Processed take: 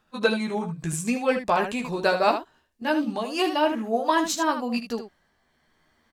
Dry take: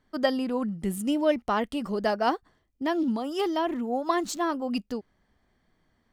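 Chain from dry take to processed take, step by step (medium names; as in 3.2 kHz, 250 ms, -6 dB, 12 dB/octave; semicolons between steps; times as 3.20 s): pitch bend over the whole clip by -3.5 st ending unshifted; bass shelf 430 Hz -11 dB; early reflections 13 ms -5.5 dB, 77 ms -8.5 dB; trim +7.5 dB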